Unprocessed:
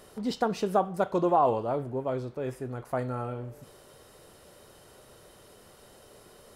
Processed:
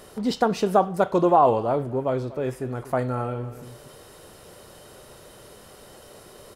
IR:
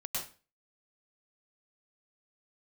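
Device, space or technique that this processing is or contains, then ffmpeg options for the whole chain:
ducked delay: -filter_complex "[0:a]asplit=3[a][b][c];[b]adelay=240,volume=-6dB[d];[c]apad=whole_len=299714[e];[d][e]sidechaincompress=threshold=-43dB:ratio=8:attack=16:release=557[f];[a][f]amix=inputs=2:normalize=0,volume=6dB"

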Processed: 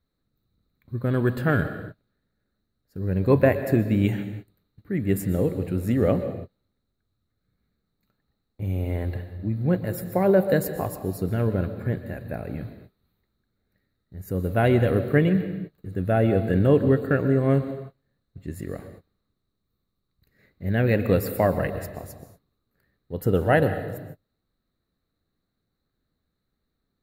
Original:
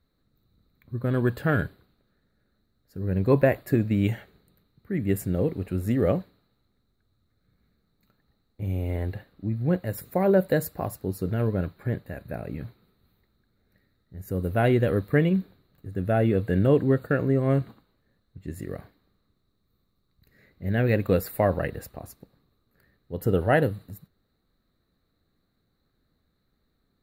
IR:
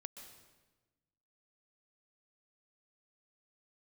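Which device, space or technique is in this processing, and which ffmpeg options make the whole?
keyed gated reverb: -filter_complex "[0:a]asplit=3[a][b][c];[1:a]atrim=start_sample=2205[d];[b][d]afir=irnorm=-1:irlink=0[e];[c]apad=whole_len=1191870[f];[e][f]sidechaingate=range=-37dB:threshold=-57dB:ratio=16:detection=peak,volume=8.5dB[g];[a][g]amix=inputs=2:normalize=0,volume=-6dB"

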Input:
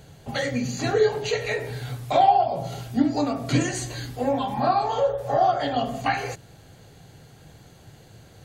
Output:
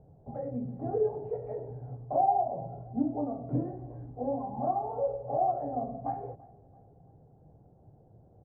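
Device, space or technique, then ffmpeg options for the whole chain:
under water: -af "lowpass=f=750:w=0.5412,lowpass=f=750:w=1.3066,equalizer=f=760:t=o:w=0.48:g=4,aecho=1:1:336|672|1008:0.0668|0.0327|0.016,volume=-8.5dB"

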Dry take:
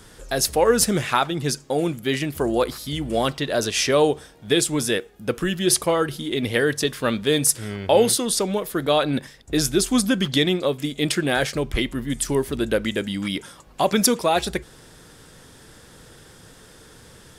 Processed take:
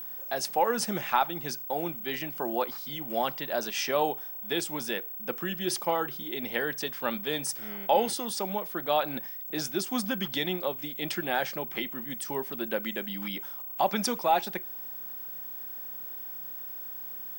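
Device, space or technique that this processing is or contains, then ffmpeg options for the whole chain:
old television with a line whistle: -af "highpass=f=180:w=0.5412,highpass=f=180:w=1.3066,equalizer=f=280:t=q:w=4:g=-7,equalizer=f=440:t=q:w=4:g=-6,equalizer=f=830:t=q:w=4:g=8,equalizer=f=4k:t=q:w=4:g=-5,equalizer=f=7.2k:t=q:w=4:g=-7,lowpass=f=8.3k:w=0.5412,lowpass=f=8.3k:w=1.3066,aeval=exprs='val(0)+0.0355*sin(2*PI*15734*n/s)':c=same,volume=-7.5dB"

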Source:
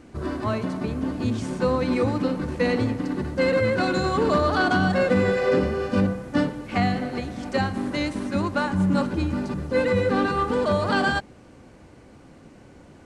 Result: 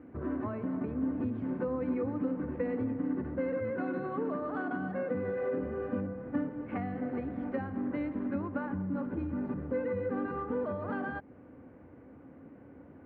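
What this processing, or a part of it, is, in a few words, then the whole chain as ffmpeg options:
bass amplifier: -filter_complex "[0:a]asettb=1/sr,asplit=3[a][b][c];[a]atrim=end=3.704[d];[b]atrim=start=3.7:end=5.15,asetpts=PTS-STARTPTS,afade=t=in:d=0.004:c=qsin,afade=t=out:st=1.446:d=0.004:c=qsin,highpass=f=130:w=0.5412,highpass=f=130:w=1.3066[e];[c]atrim=start=5.146[f];[d][e]acrossfade=d=0.004:c1=hsin:c2=qsin[g];[g][f]acrossfade=d=0.004:c1=qsin:c2=hsin,acompressor=threshold=-27dB:ratio=6,highpass=69,equalizer=f=89:t=q:w=4:g=4,equalizer=f=270:t=q:w=4:g=9,equalizer=f=490:t=q:w=4:g=5,lowpass=f=2k:w=0.5412,lowpass=f=2k:w=1.3066,volume=-7.5dB"

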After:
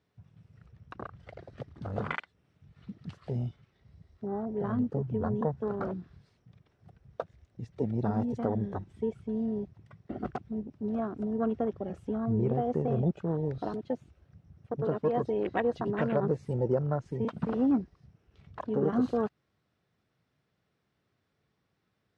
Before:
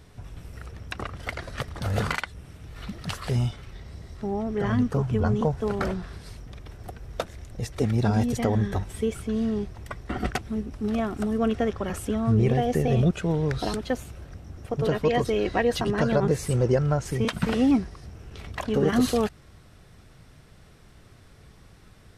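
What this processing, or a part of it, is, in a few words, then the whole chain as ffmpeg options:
over-cleaned archive recording: -af "highpass=130,lowpass=5k,afwtdn=0.0316,volume=-5dB"

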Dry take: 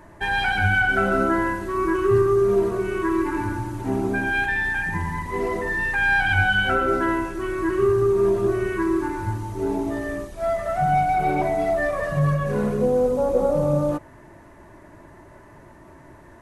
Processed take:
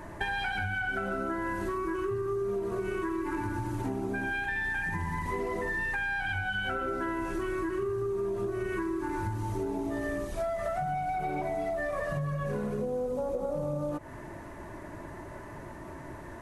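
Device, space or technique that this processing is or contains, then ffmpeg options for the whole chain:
serial compression, peaks first: -af "acompressor=threshold=-28dB:ratio=6,acompressor=threshold=-34dB:ratio=3,volume=3.5dB"

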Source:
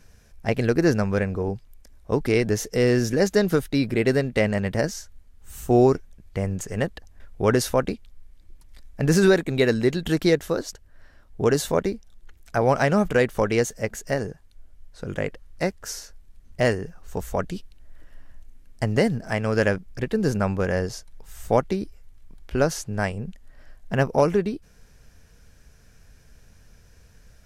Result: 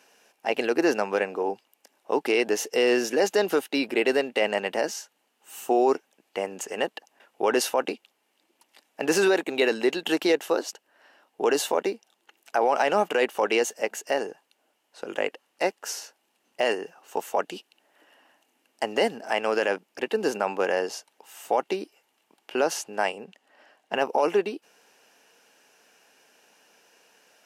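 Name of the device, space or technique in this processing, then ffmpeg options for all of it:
laptop speaker: -filter_complex "[0:a]asettb=1/sr,asplit=3[a][b][c];[a]atrim=end=23.244[d];[b]atrim=start=23.24:end=23.95,asetpts=PTS-STARTPTS,afade=t=in:d=0.004:c=qsin,afade=t=out:st=0.706:d=0.004:c=qsin,highshelf=f=10k:g=-11.5[e];[c]atrim=start=23.946[f];[d][e]acrossfade=d=0.004:c1=hsin:c2=qsin[g];[g][f]acrossfade=d=0.004:c1=qsin:c2=hsin,highpass=f=300:w=0.5412,highpass=f=300:w=1.3066,equalizer=f=840:t=o:w=0.52:g=8.5,equalizer=f=2.8k:t=o:w=0.26:g=11,alimiter=limit=-12dB:level=0:latency=1:release=19"

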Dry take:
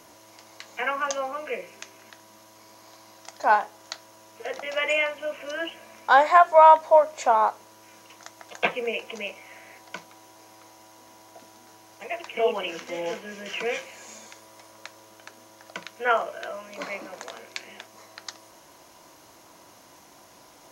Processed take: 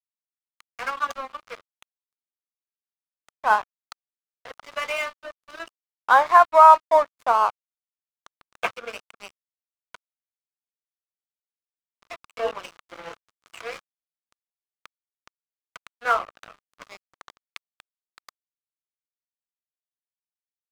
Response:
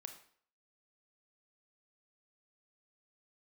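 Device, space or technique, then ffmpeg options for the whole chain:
pocket radio on a weak battery: -af "highpass=310,lowpass=4.2k,aeval=exprs='sgn(val(0))*max(abs(val(0))-0.0282,0)':c=same,equalizer=f=1.2k:t=o:w=0.51:g=10,volume=-1.5dB"

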